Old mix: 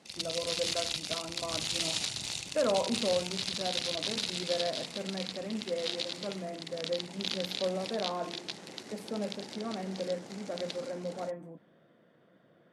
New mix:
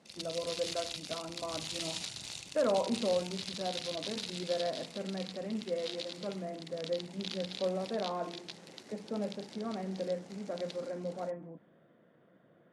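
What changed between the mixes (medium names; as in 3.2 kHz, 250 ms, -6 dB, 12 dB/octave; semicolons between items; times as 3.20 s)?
speech: add distance through air 260 m; background -6.5 dB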